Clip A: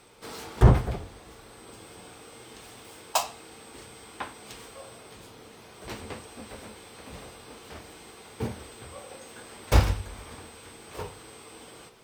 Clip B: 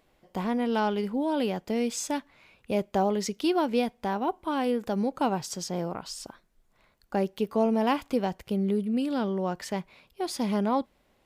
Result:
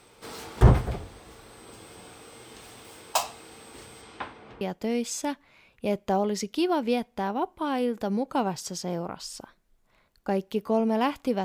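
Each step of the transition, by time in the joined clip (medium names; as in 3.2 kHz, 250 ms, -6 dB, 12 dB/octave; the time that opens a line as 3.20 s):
clip A
4.01–4.61 s: low-pass 8.6 kHz -> 1.2 kHz
4.61 s: go over to clip B from 1.47 s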